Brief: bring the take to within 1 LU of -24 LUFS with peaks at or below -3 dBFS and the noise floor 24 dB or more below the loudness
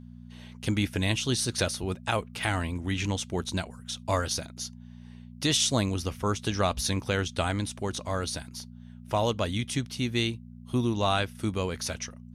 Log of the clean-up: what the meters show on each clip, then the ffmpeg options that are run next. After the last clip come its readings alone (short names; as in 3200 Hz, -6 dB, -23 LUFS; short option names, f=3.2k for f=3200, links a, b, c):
hum 60 Hz; harmonics up to 240 Hz; hum level -44 dBFS; loudness -29.5 LUFS; peak -11.5 dBFS; loudness target -24.0 LUFS
-> -af "bandreject=f=60:t=h:w=4,bandreject=f=120:t=h:w=4,bandreject=f=180:t=h:w=4,bandreject=f=240:t=h:w=4"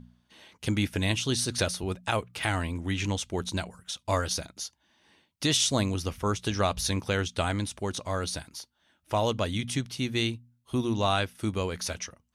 hum none; loudness -29.5 LUFS; peak -12.0 dBFS; loudness target -24.0 LUFS
-> -af "volume=5.5dB"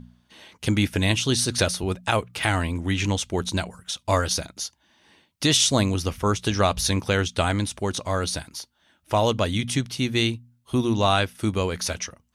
loudness -24.0 LUFS; peak -6.5 dBFS; noise floor -68 dBFS